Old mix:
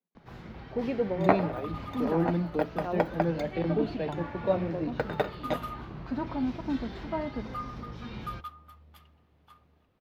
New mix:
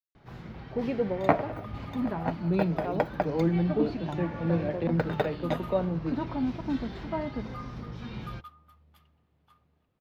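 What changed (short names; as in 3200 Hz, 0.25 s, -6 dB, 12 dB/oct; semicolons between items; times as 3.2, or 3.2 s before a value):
speech: entry +1.25 s; second sound -6.5 dB; master: add bell 140 Hz +4.5 dB 0.85 oct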